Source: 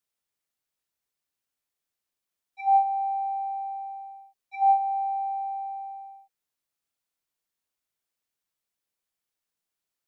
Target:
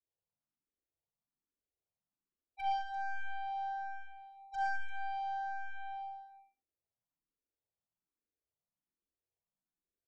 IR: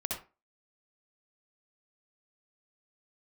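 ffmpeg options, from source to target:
-filter_complex "[0:a]adynamicequalizer=threshold=0.0178:dfrequency=700:dqfactor=1:tfrequency=700:tqfactor=1:attack=5:release=100:ratio=0.375:range=4:mode=cutabove:tftype=bell,alimiter=level_in=2dB:limit=-24dB:level=0:latency=1:release=452,volume=-2dB,aeval=exprs='clip(val(0),-1,0.0106)':c=same,adynamicsmooth=sensitivity=5.5:basefreq=680,asplit=2[a][b];[b]aecho=0:1:41|67|107|113|207|342:0.376|0.237|0.126|0.447|0.178|0.211[c];[a][c]amix=inputs=2:normalize=0,asplit=2[d][e];[e]afreqshift=1.2[f];[d][f]amix=inputs=2:normalize=1,volume=2dB"

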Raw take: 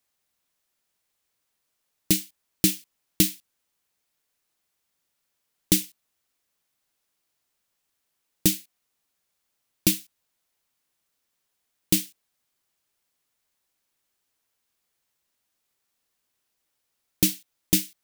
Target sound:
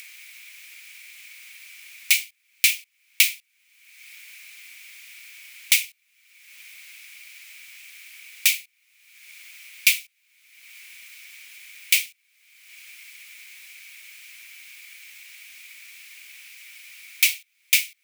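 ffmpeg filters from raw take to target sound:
-af "highpass=f=2.3k:t=q:w=9.2,acompressor=mode=upward:threshold=-25dB:ratio=2.5,volume=2dB"

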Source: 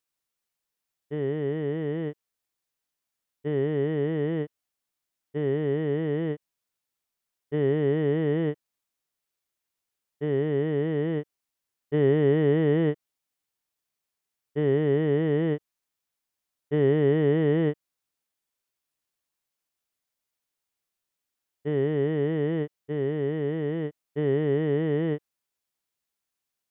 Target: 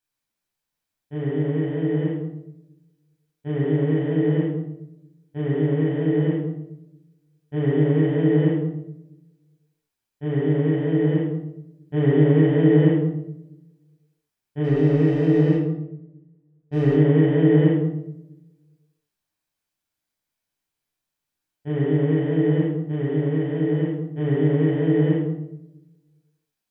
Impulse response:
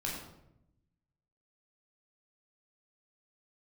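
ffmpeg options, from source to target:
-filter_complex "[0:a]asplit=3[a][b][c];[a]afade=t=out:st=14.63:d=0.02[d];[b]adynamicsmooth=sensitivity=5.5:basefreq=1.1k,afade=t=in:st=14.63:d=0.02,afade=t=out:st=16.92:d=0.02[e];[c]afade=t=in:st=16.92:d=0.02[f];[d][e][f]amix=inputs=3:normalize=0[g];[1:a]atrim=start_sample=2205[h];[g][h]afir=irnorm=-1:irlink=0"

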